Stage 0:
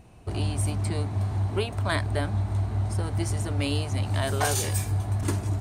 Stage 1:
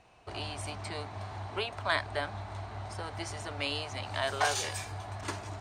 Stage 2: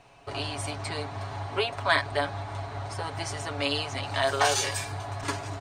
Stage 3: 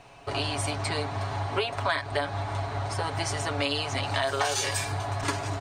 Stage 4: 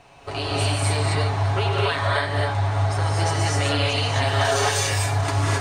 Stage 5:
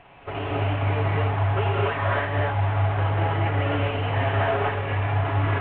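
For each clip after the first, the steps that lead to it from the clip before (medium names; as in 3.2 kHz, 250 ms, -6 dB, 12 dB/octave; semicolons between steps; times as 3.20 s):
three-band isolator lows -16 dB, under 530 Hz, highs -19 dB, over 6.7 kHz
comb 7.2 ms; trim +4.5 dB
compression 6:1, threshold -28 dBFS, peak gain reduction 10.5 dB; trim +4.5 dB
gated-style reverb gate 290 ms rising, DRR -4.5 dB
CVSD coder 16 kbps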